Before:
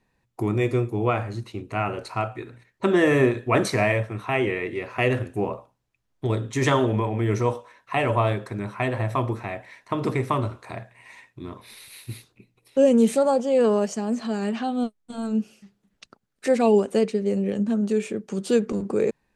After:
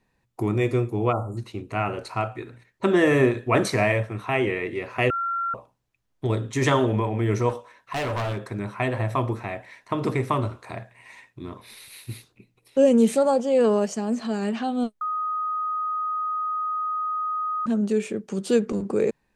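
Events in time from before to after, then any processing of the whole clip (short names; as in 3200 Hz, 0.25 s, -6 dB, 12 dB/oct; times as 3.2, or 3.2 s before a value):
1.12–1.37 spectral delete 1400–6900 Hz
5.1–5.54 bleep 1370 Hz -23.5 dBFS
7.49–8.39 hard clip -24.5 dBFS
15.01–17.66 bleep 1250 Hz -24 dBFS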